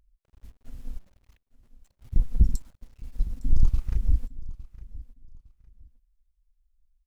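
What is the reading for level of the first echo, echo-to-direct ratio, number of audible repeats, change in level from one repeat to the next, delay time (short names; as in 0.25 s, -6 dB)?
-18.0 dB, -17.5 dB, 2, -12.0 dB, 0.859 s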